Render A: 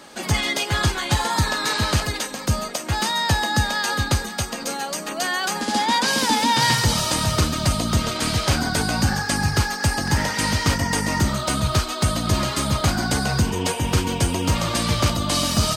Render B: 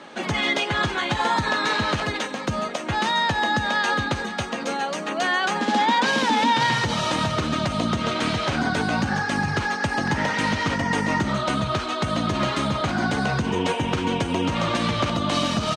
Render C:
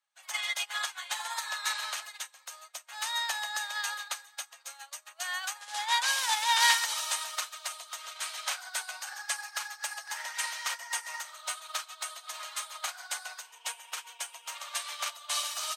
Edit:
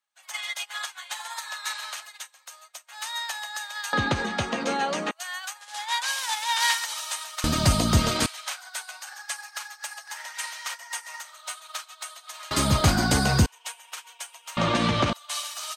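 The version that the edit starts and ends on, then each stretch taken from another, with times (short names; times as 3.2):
C
3.93–5.11 from B
7.44–8.26 from A
12.51–13.46 from A
14.57–15.13 from B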